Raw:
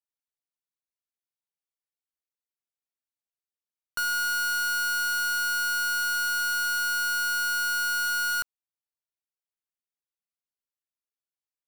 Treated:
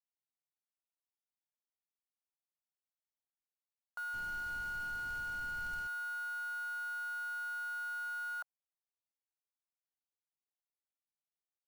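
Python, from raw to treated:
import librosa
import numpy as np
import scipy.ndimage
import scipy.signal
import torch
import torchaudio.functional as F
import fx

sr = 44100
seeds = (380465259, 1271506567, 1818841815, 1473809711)

y = fx.ladder_bandpass(x, sr, hz=880.0, resonance_pct=55)
y = fx.dmg_noise_colour(y, sr, seeds[0], colour='brown', level_db=-52.0, at=(4.13, 5.86), fade=0.02)
y = fx.quant_float(y, sr, bits=2)
y = y * 10.0 ** (1.0 / 20.0)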